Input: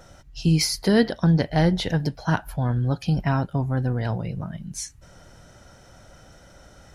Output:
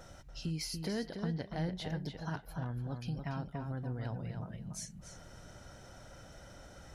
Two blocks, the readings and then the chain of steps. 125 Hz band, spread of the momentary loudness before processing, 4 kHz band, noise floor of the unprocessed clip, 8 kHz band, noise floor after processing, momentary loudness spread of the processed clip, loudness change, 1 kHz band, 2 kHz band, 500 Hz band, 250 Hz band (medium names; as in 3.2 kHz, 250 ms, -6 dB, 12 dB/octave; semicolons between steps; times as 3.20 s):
-15.5 dB, 13 LU, -15.5 dB, -51 dBFS, -14.0 dB, -54 dBFS, 16 LU, -16.0 dB, -15.5 dB, -16.0 dB, -16.5 dB, -16.5 dB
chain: compression 2:1, threshold -43 dBFS, peak gain reduction 16 dB; filtered feedback delay 287 ms, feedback 17%, low-pass 4.7 kHz, level -6 dB; trim -4 dB